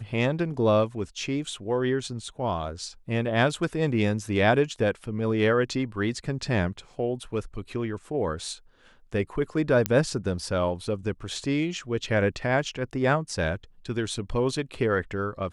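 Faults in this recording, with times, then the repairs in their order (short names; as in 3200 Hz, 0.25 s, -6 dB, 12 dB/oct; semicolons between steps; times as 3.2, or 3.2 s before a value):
9.86 pop -7 dBFS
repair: de-click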